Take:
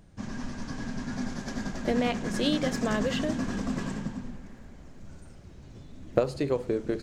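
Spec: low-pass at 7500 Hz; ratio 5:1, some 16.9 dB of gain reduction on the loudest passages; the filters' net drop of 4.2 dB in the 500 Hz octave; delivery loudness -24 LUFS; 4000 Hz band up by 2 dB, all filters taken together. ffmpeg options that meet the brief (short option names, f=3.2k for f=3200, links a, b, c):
-af "lowpass=7.5k,equalizer=f=500:t=o:g=-5,equalizer=f=4k:t=o:g=3,acompressor=threshold=-42dB:ratio=5,volume=22dB"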